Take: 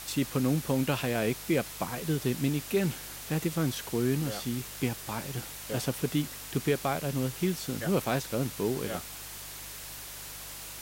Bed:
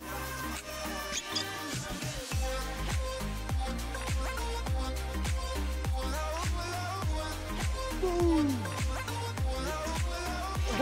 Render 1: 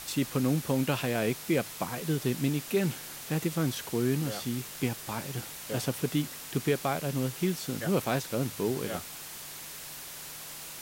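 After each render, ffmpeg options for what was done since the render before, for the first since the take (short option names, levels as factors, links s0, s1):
-af "bandreject=f=50:t=h:w=4,bandreject=f=100:t=h:w=4"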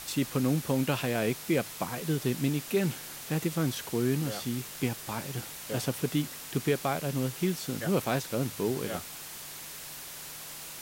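-af anull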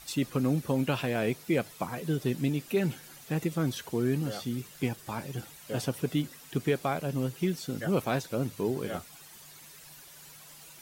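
-af "afftdn=nr=11:nf=-43"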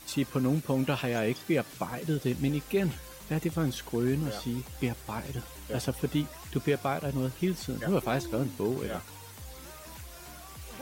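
-filter_complex "[1:a]volume=0.2[s0];[0:a][s0]amix=inputs=2:normalize=0"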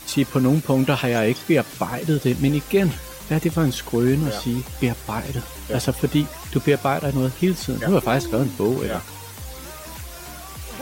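-af "volume=2.99"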